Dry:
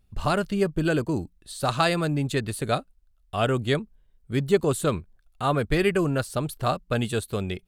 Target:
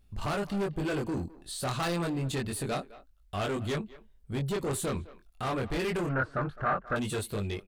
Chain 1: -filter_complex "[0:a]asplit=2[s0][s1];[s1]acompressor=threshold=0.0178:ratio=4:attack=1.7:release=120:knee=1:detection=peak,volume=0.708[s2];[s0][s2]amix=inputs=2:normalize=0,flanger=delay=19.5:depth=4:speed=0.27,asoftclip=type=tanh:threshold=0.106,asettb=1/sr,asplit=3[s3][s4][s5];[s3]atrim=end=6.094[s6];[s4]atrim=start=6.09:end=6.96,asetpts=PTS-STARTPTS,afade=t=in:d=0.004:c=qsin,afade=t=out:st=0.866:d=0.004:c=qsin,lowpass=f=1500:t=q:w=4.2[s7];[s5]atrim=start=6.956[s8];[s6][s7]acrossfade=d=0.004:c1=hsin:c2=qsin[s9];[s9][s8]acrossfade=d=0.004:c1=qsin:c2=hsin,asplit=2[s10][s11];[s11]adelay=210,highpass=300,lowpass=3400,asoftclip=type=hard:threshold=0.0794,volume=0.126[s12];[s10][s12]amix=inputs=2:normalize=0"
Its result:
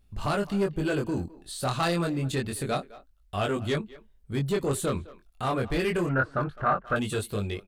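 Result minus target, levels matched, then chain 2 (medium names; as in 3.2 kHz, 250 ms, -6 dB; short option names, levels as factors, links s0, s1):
saturation: distortion -8 dB
-filter_complex "[0:a]asplit=2[s0][s1];[s1]acompressor=threshold=0.0178:ratio=4:attack=1.7:release=120:knee=1:detection=peak,volume=0.708[s2];[s0][s2]amix=inputs=2:normalize=0,flanger=delay=19.5:depth=4:speed=0.27,asoftclip=type=tanh:threshold=0.0422,asettb=1/sr,asplit=3[s3][s4][s5];[s3]atrim=end=6.094[s6];[s4]atrim=start=6.09:end=6.96,asetpts=PTS-STARTPTS,afade=t=in:d=0.004:c=qsin,afade=t=out:st=0.866:d=0.004:c=qsin,lowpass=f=1500:t=q:w=4.2[s7];[s5]atrim=start=6.956[s8];[s6][s7]acrossfade=d=0.004:c1=hsin:c2=qsin[s9];[s9][s8]acrossfade=d=0.004:c1=qsin:c2=hsin,asplit=2[s10][s11];[s11]adelay=210,highpass=300,lowpass=3400,asoftclip=type=hard:threshold=0.0794,volume=0.126[s12];[s10][s12]amix=inputs=2:normalize=0"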